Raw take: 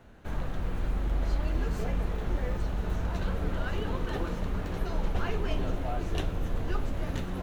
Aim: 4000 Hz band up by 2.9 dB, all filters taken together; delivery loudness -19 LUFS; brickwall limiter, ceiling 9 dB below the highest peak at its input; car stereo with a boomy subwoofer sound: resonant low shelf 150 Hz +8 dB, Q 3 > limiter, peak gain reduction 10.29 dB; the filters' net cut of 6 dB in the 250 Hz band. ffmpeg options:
-af "equalizer=f=250:t=o:g=-8,equalizer=f=4k:t=o:g=4,alimiter=level_in=2.5dB:limit=-24dB:level=0:latency=1,volume=-2.5dB,lowshelf=f=150:t=q:w=3:g=8,volume=18dB,alimiter=limit=-9dB:level=0:latency=1"

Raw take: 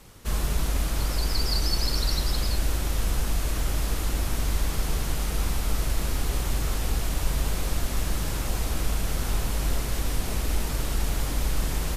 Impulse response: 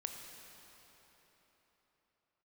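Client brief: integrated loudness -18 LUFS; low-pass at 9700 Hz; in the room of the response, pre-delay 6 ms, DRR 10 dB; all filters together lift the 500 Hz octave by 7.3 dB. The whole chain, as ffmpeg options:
-filter_complex "[0:a]lowpass=9.7k,equalizer=f=500:t=o:g=9,asplit=2[a][b];[1:a]atrim=start_sample=2205,adelay=6[c];[b][c]afir=irnorm=-1:irlink=0,volume=-9dB[d];[a][d]amix=inputs=2:normalize=0,volume=10dB"

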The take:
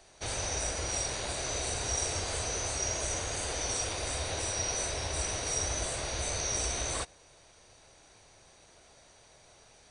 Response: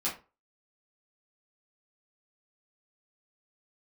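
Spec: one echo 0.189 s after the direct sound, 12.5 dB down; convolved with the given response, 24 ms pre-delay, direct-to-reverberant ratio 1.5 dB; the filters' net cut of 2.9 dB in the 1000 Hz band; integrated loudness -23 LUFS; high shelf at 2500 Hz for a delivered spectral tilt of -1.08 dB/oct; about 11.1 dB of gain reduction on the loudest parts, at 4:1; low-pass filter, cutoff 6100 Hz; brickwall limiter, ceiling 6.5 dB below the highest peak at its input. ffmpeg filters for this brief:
-filter_complex "[0:a]lowpass=6.1k,equalizer=f=1k:t=o:g=-5.5,highshelf=f=2.5k:g=8,acompressor=threshold=-39dB:ratio=4,alimiter=level_in=10dB:limit=-24dB:level=0:latency=1,volume=-10dB,aecho=1:1:189:0.237,asplit=2[a][b];[1:a]atrim=start_sample=2205,adelay=24[c];[b][c]afir=irnorm=-1:irlink=0,volume=-7dB[d];[a][d]amix=inputs=2:normalize=0,volume=16.5dB"

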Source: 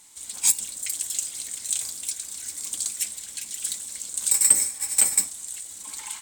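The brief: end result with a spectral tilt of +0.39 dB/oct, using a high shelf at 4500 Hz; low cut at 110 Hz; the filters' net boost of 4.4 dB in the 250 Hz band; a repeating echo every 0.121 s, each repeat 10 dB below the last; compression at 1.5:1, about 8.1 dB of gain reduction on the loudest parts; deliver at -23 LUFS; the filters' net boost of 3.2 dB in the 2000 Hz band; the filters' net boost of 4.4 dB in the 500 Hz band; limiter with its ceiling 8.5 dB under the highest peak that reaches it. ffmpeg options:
-af "highpass=110,equalizer=f=250:t=o:g=4.5,equalizer=f=500:t=o:g=4,equalizer=f=2k:t=o:g=4.5,highshelf=f=4.5k:g=-4.5,acompressor=threshold=-38dB:ratio=1.5,alimiter=limit=-23dB:level=0:latency=1,aecho=1:1:121|242|363|484:0.316|0.101|0.0324|0.0104,volume=12dB"

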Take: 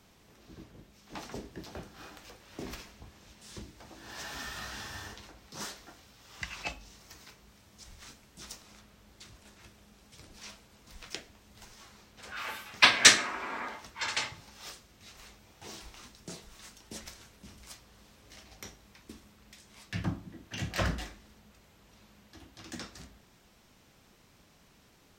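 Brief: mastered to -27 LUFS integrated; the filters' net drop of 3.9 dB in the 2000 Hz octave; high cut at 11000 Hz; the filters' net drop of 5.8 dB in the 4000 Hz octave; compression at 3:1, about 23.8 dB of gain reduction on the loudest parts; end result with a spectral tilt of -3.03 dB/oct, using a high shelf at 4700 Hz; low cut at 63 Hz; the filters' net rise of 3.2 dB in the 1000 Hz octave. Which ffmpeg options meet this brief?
-af "highpass=63,lowpass=11k,equalizer=f=1k:t=o:g=5.5,equalizer=f=2k:t=o:g=-5,equalizer=f=4k:t=o:g=-8.5,highshelf=f=4.7k:g=4.5,acompressor=threshold=-49dB:ratio=3,volume=25dB"

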